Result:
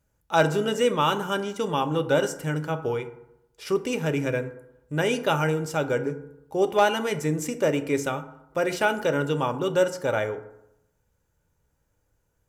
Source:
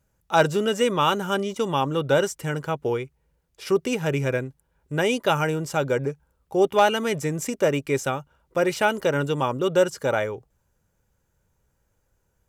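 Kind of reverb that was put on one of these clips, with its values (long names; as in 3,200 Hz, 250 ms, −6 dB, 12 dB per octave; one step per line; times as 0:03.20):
feedback delay network reverb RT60 0.83 s, low-frequency decay 1×, high-frequency decay 0.45×, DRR 8 dB
level −2.5 dB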